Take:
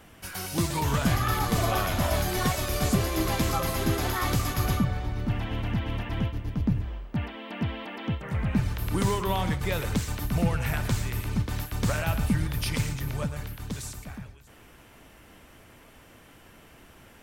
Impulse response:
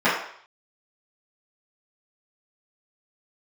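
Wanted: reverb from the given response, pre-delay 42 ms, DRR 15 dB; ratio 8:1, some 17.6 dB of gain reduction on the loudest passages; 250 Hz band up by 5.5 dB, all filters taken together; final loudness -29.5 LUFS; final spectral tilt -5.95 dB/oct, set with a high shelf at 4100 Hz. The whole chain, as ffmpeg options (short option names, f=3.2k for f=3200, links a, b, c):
-filter_complex "[0:a]equalizer=f=250:t=o:g=7.5,highshelf=f=4.1k:g=-4.5,acompressor=threshold=-34dB:ratio=8,asplit=2[a][b];[1:a]atrim=start_sample=2205,adelay=42[c];[b][c]afir=irnorm=-1:irlink=0,volume=-35.5dB[d];[a][d]amix=inputs=2:normalize=0,volume=9dB"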